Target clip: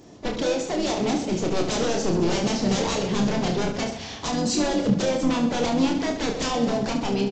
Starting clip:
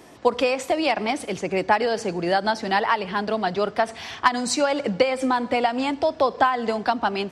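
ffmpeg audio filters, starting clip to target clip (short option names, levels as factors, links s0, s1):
-filter_complex "[0:a]dynaudnorm=f=420:g=5:m=3.76,aeval=exprs='0.126*(abs(mod(val(0)/0.126+3,4)-2)-1)':c=same,asplit=3[s0][s1][s2];[s1]asetrate=29433,aresample=44100,atempo=1.49831,volume=0.251[s3];[s2]asetrate=52444,aresample=44100,atempo=0.840896,volume=0.316[s4];[s0][s3][s4]amix=inputs=3:normalize=0,equalizer=f=1700:w=0.4:g=-13.5,aresample=16000,aresample=44100,aecho=1:1:30|72|130.8|213.1|328.4:0.631|0.398|0.251|0.158|0.1,volume=1.41"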